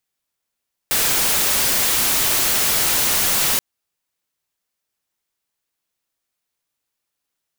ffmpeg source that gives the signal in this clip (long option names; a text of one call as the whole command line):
ffmpeg -f lavfi -i "anoisesrc=color=white:amplitude=0.218:duration=2.68:sample_rate=44100:seed=1" out.wav